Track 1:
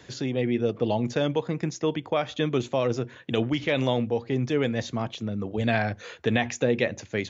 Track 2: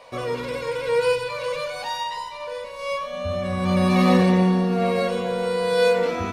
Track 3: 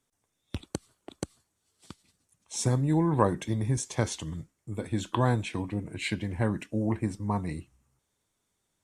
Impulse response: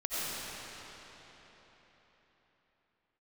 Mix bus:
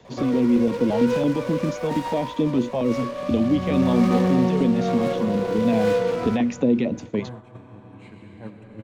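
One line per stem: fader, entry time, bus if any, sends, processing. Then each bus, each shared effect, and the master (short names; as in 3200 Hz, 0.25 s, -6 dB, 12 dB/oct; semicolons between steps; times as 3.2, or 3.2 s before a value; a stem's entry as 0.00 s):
+1.5 dB, 0.00 s, no send, fifteen-band EQ 100 Hz -8 dB, 250 Hz +11 dB, 1600 Hz -11 dB; transient shaper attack -1 dB, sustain +4 dB; stepped notch 8.9 Hz 290–1700 Hz
-3.0 dB, 0.05 s, send -19.5 dB, noise-modulated delay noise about 3000 Hz, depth 0.054 ms
-19.0 dB, 2.00 s, send -3.5 dB, dry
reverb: on, RT60 4.3 s, pre-delay 50 ms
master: gate -39 dBFS, range -9 dB; high shelf 2500 Hz -12 dB; three-band squash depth 40%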